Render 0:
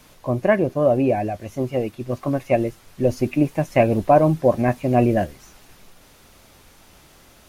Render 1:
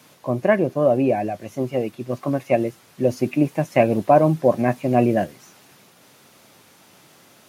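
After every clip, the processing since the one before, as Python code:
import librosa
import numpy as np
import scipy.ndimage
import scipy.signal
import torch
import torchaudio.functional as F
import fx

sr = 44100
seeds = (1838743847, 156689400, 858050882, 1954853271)

y = scipy.signal.sosfilt(scipy.signal.butter(4, 120.0, 'highpass', fs=sr, output='sos'), x)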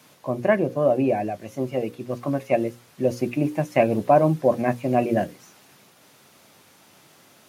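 y = fx.hum_notches(x, sr, base_hz=60, count=9)
y = y * librosa.db_to_amplitude(-2.0)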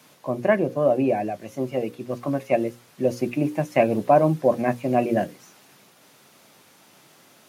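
y = scipy.signal.sosfilt(scipy.signal.butter(2, 110.0, 'highpass', fs=sr, output='sos'), x)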